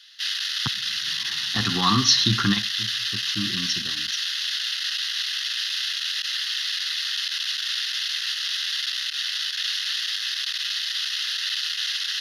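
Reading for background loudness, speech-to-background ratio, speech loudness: -24.5 LUFS, 1.5 dB, -23.0 LUFS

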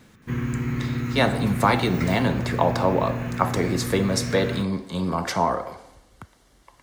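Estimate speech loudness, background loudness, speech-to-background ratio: -24.0 LUFS, -29.0 LUFS, 5.0 dB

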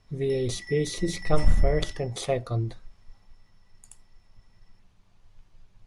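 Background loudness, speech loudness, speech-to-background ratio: -43.0 LUFS, -28.0 LUFS, 15.0 dB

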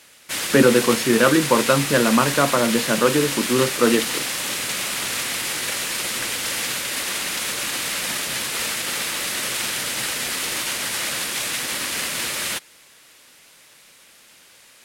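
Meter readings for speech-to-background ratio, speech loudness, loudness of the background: 4.0 dB, -19.0 LUFS, -23.0 LUFS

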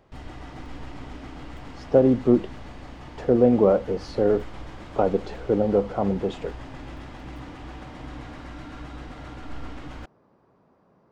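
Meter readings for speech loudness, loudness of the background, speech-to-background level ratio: -22.5 LUFS, -41.0 LUFS, 18.5 dB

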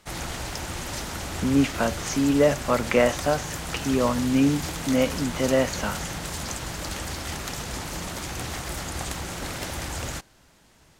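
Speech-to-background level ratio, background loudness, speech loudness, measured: 8.0 dB, -32.0 LUFS, -24.0 LUFS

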